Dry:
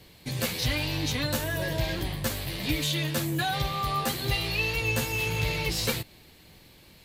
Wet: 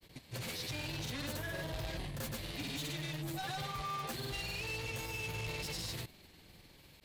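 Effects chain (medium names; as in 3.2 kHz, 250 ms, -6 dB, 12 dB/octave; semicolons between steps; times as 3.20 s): saturation -32 dBFS, distortion -8 dB; granulator, pitch spread up and down by 0 st; trim -4 dB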